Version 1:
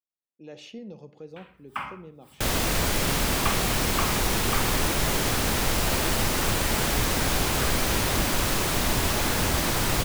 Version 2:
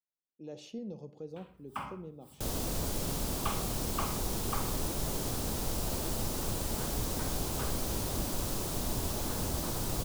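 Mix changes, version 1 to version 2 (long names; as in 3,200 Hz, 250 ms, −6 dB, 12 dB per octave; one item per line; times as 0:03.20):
second sound −8.0 dB
master: add parametric band 2,000 Hz −13 dB 1.6 octaves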